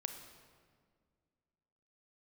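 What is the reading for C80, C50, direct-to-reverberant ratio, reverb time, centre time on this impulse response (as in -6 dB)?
8.5 dB, 7.0 dB, 6.0 dB, 1.9 s, 28 ms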